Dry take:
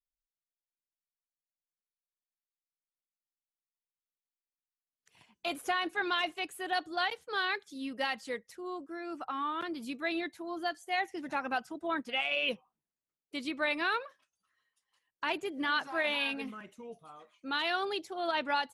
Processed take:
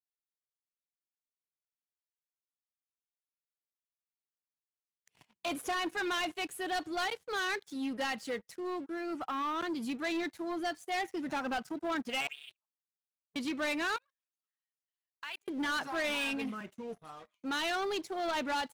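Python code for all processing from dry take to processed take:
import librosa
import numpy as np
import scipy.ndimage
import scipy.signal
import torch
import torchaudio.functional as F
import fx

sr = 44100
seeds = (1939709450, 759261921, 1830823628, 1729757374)

y = fx.chain(x, sr, fx.level_steps(step_db=18),
    fx.auto_wah(base_hz=260.0, top_hz=3600.0, q=10.0, full_db=-33.0, direction='up'),
    fx.ring_mod(carrier_hz=130.0), at=(12.27, 13.36))
y = fx.chain(y, sr, fx.bessel_highpass(hz=1800.0, order=2),
    fx.level_steps(step_db=22), at=(13.96, 15.48))
y = scipy.signal.sosfilt(scipy.signal.butter(2, 99.0, 'highpass', fs=sr, output='sos'), y)
y = fx.low_shelf(y, sr, hz=140.0, db=10.5)
y = fx.leveller(y, sr, passes=3)
y = y * librosa.db_to_amplitude(-8.5)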